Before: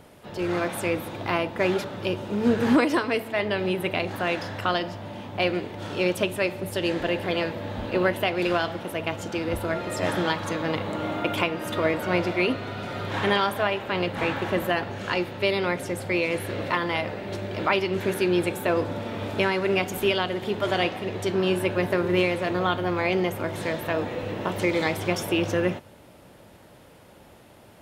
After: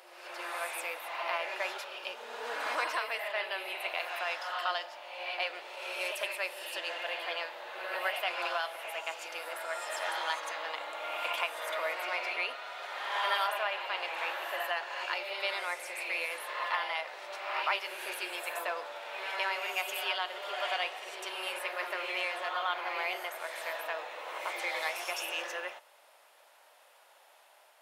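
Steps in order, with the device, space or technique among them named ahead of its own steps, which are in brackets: ghost voice (reverse; reverberation RT60 1.1 s, pre-delay 86 ms, DRR 2.5 dB; reverse; high-pass 690 Hz 24 dB/octave); trim -6.5 dB

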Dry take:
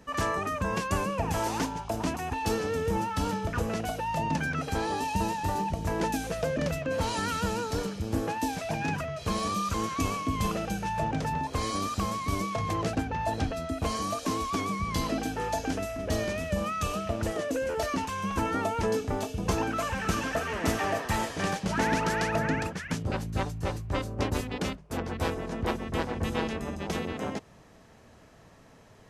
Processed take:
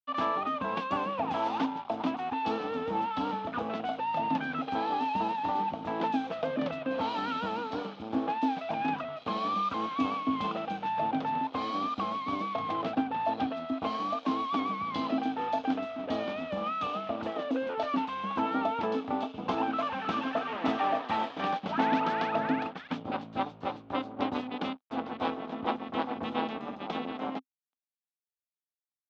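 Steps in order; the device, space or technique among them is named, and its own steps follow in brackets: blown loudspeaker (crossover distortion -44 dBFS; cabinet simulation 250–3700 Hz, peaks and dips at 260 Hz +10 dB, 390 Hz -4 dB, 790 Hz +8 dB, 1.2 kHz +5 dB, 1.8 kHz -5 dB, 3.5 kHz +5 dB); trim -2 dB

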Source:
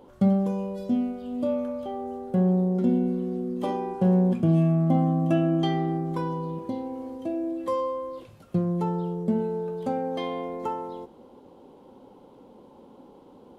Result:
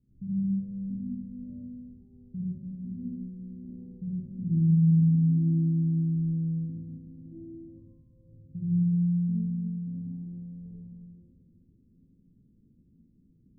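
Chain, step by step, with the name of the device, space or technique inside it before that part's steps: club heard from the street (peak limiter -17 dBFS, peak gain reduction 5.5 dB; low-pass 170 Hz 24 dB/octave; reverberation RT60 1.6 s, pre-delay 53 ms, DRR -7.5 dB); trim -7 dB

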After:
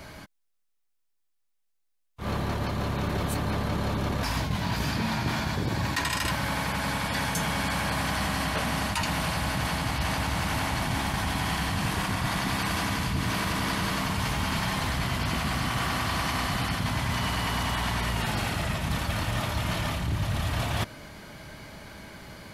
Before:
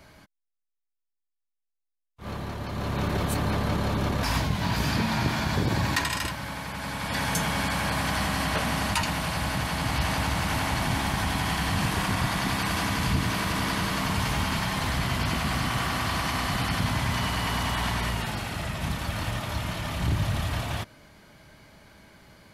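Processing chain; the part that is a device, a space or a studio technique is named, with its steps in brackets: compression on the reversed sound (reverse; compression 12:1, threshold -33 dBFS, peak gain reduction 13.5 dB; reverse); trim +8.5 dB

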